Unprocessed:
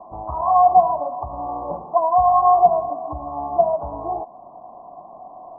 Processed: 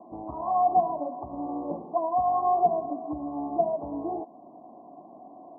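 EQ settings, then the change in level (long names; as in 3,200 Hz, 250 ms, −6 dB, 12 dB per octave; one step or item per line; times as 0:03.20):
resonant band-pass 290 Hz, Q 2.6
+6.0 dB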